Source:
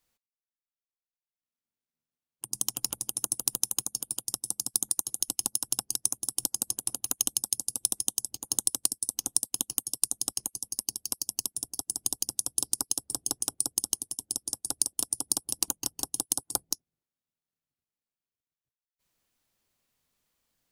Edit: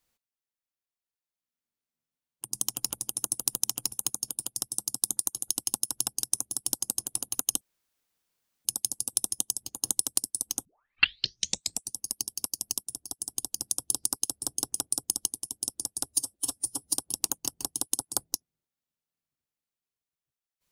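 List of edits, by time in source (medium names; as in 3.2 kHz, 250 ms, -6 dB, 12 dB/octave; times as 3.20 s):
2.63–2.91 s: copy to 3.64 s
7.33 s: insert room tone 1.04 s
9.33 s: tape start 1.30 s
11.51–12.24 s: gain -3 dB
14.74–15.33 s: stretch 1.5×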